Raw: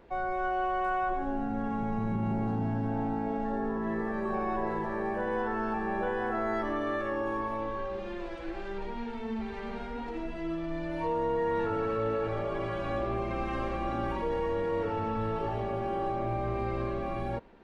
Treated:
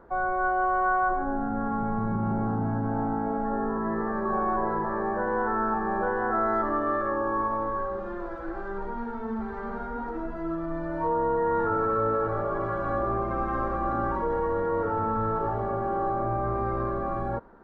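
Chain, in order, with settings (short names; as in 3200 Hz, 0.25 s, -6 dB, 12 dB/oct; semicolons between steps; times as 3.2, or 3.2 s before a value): resonant high shelf 1900 Hz -11 dB, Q 3; gain +2.5 dB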